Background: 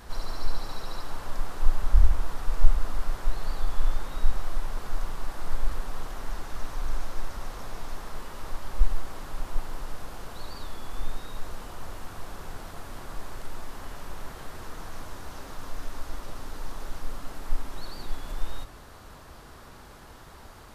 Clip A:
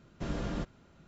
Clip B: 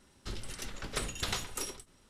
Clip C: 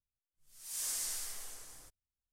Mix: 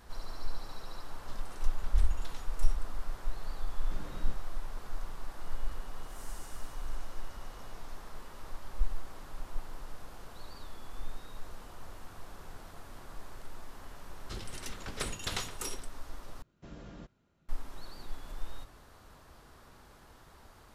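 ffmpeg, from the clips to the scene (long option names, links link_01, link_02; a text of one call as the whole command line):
ffmpeg -i bed.wav -i cue0.wav -i cue1.wav -i cue2.wav -filter_complex "[2:a]asplit=2[link_01][link_02];[1:a]asplit=2[link_03][link_04];[0:a]volume=-8.5dB[link_05];[link_01]alimiter=limit=-24dB:level=0:latency=1:release=472[link_06];[3:a]aeval=exprs='val(0)+0.00316*sin(2*PI*2900*n/s)':channel_layout=same[link_07];[link_05]asplit=2[link_08][link_09];[link_08]atrim=end=16.424[link_10];[link_04]atrim=end=1.07,asetpts=PTS-STARTPTS,volume=-13dB[link_11];[link_09]atrim=start=17.486[link_12];[link_06]atrim=end=2.09,asetpts=PTS-STARTPTS,volume=-12.5dB,afade=type=in:duration=0.004:curve=hsin,afade=type=out:start_time=2.086:duration=0.004:curve=hsin,adelay=1020[link_13];[link_03]atrim=end=1.07,asetpts=PTS-STARTPTS,volume=-12dB,afade=type=in:duration=0.004:curve=hsin,afade=type=out:start_time=1.066:duration=0.004:curve=hsin,adelay=3700[link_14];[link_07]atrim=end=2.32,asetpts=PTS-STARTPTS,volume=-17dB,afade=type=in:duration=0.004:curve=hsin,afade=type=out:start_time=2.316:duration=0.004:curve=hsin,adelay=238581S[link_15];[link_02]atrim=end=2.09,asetpts=PTS-STARTPTS,volume=-1.5dB,afade=type=in:duration=0.004:curve=hsin,afade=type=out:start_time=2.086:duration=0.004:curve=hsin,adelay=14040[link_16];[link_10][link_11]acrossfade=duration=0.004:curve1=hsin:curve2=hsin[link_17];[link_17][link_12]acrossfade=duration=0.004:curve1=hsin:curve2=hsin[link_18];[link_18][link_13][link_14][link_15][link_16]amix=inputs=5:normalize=0" out.wav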